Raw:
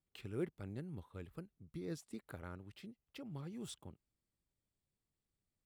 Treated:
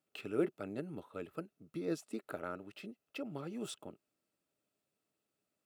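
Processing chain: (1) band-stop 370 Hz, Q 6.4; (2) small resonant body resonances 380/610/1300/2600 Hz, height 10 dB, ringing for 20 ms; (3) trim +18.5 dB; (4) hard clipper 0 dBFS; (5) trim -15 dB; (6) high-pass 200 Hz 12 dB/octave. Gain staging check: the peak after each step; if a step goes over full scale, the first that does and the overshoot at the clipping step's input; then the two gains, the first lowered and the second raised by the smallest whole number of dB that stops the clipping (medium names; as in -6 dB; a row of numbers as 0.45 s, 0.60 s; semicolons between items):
-29.0 dBFS, -22.5 dBFS, -4.0 dBFS, -4.0 dBFS, -19.0 dBFS, -20.5 dBFS; nothing clips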